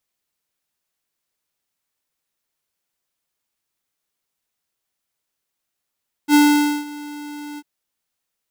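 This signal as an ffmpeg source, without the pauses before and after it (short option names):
-f lavfi -i "aevalsrc='0.282*(2*lt(mod(294*t,1),0.5)-1)':d=1.346:s=44100,afade=t=in:d=0.062,afade=t=out:st=0.062:d=0.5:silence=0.0841,afade=t=out:st=1.3:d=0.046"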